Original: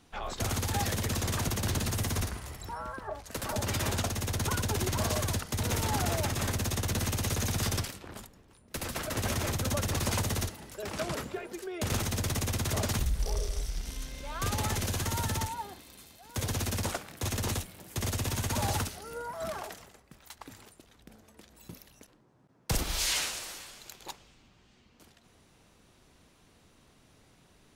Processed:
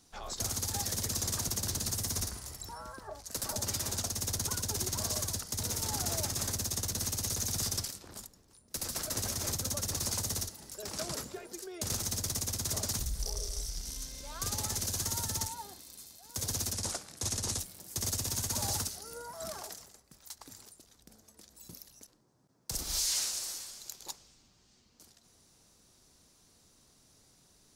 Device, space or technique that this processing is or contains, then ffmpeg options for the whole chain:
over-bright horn tweeter: -filter_complex "[0:a]asettb=1/sr,asplit=3[s0][s1][s2];[s0]atrim=end=16.734[s3];[s1]atrim=start=16.73:end=17.59,asetpts=PTS-STARTPTS,afade=t=in:d=0.004:c=qsin,afade=t=out:st=0.856:d=0.004:c=qsin,lowpass=f=11000:w=0.5412,lowpass=f=11000:w=1.3066[s4];[s2]atrim=start=17.586[s5];[s3][s4]acrossfade=d=0.004:c1=hsin:c2=qsin[s6];[s6][s5]acrossfade=d=0.004:c1=qsin:c2=hsin,highshelf=f=3800:t=q:w=1.5:g=9.5,alimiter=limit=0.178:level=0:latency=1:release=228,volume=0.501"

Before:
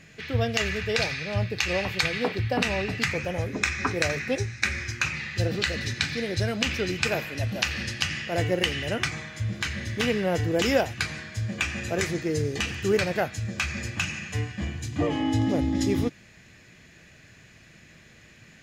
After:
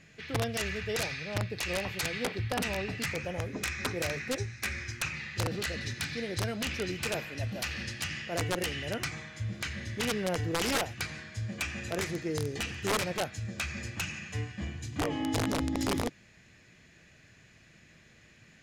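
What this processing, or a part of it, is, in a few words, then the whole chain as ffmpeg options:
overflowing digital effects unit: -af "aeval=exprs='(mod(6.68*val(0)+1,2)-1)/6.68':c=same,lowpass=12000,volume=0.501"

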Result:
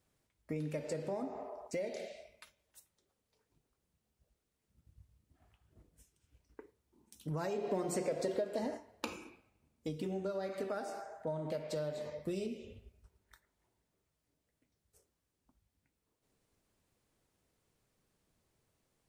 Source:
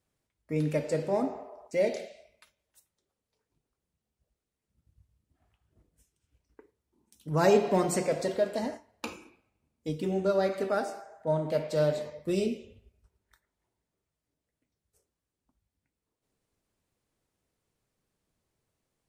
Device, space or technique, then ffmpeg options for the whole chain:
serial compression, peaks first: -filter_complex "[0:a]acompressor=threshold=0.0224:ratio=6,acompressor=threshold=0.00501:ratio=1.5,asettb=1/sr,asplit=3[s0][s1][s2];[s0]atrim=end=7.584[s3];[s1]atrim=start=7.58:end=9.05,asetpts=PTS-STARTPTS,afade=t=in:d=0.004:c=qsin,afade=t=out:st=1.466:d=0.004:c=qsin,equalizer=f=410:w=1.2:g=5.5[s4];[s2]atrim=start=9.046[s5];[s3][s4]acrossfade=d=0.004:c1=hsin:c2=qsin[s6];[s6][s5]acrossfade=d=0.004:c1=qsin:c2=hsin,volume=1.33"

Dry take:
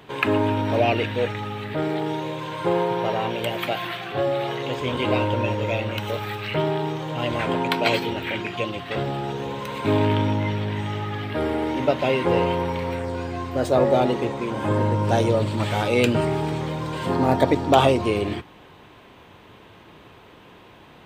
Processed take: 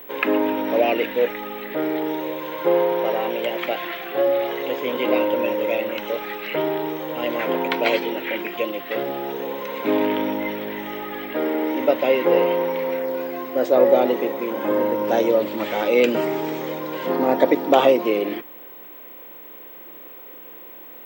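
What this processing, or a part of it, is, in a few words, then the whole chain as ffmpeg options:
old television with a line whistle: -filter_complex "[0:a]asettb=1/sr,asplit=3[s0][s1][s2];[s0]atrim=end=16.084[s3];[s1]atrim=start=16.08:end=16.79,asetpts=PTS-STARTPTS,afade=t=in:d=0.004:c=qsin,afade=t=out:st=0.706:d=0.004:c=qsin,equalizer=f=7100:w=1:g=6[s4];[s2]atrim=start=16.786[s5];[s3][s4]acrossfade=d=0.004:c1=hsin:c2=qsin[s6];[s6][s5]acrossfade=d=0.004:c1=qsin:c2=hsin,highpass=f=210:w=0.5412,highpass=f=210:w=1.3066,equalizer=f=320:t=q:w=4:g=4,equalizer=f=520:t=q:w=4:g=8,equalizer=f=2000:t=q:w=4:g=5,equalizer=f=4400:t=q:w=4:g=-5,lowpass=f=6600:w=0.5412,lowpass=f=6600:w=1.3066,aeval=exprs='val(0)+0.0141*sin(2*PI*15734*n/s)':c=same,volume=0.841"

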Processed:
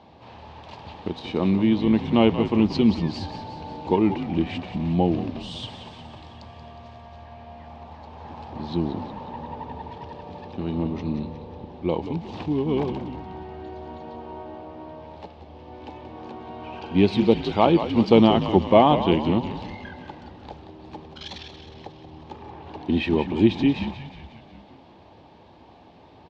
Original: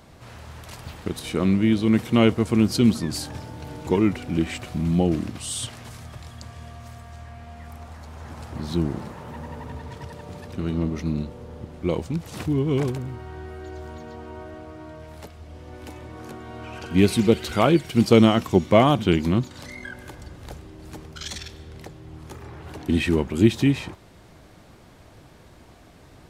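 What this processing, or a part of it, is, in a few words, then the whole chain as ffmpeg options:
frequency-shifting delay pedal into a guitar cabinet: -filter_complex "[0:a]asplit=8[s0][s1][s2][s3][s4][s5][s6][s7];[s1]adelay=181,afreqshift=-68,volume=0.316[s8];[s2]adelay=362,afreqshift=-136,volume=0.186[s9];[s3]adelay=543,afreqshift=-204,volume=0.11[s10];[s4]adelay=724,afreqshift=-272,volume=0.0653[s11];[s5]adelay=905,afreqshift=-340,volume=0.0385[s12];[s6]adelay=1086,afreqshift=-408,volume=0.0226[s13];[s7]adelay=1267,afreqshift=-476,volume=0.0133[s14];[s0][s8][s9][s10][s11][s12][s13][s14]amix=inputs=8:normalize=0,highpass=94,equalizer=f=130:t=q:w=4:g=-9,equalizer=f=860:t=q:w=4:g=9,equalizer=f=1400:t=q:w=4:g=-10,equalizer=f=2000:t=q:w=4:g=-6,lowpass=f=4100:w=0.5412,lowpass=f=4100:w=1.3066"

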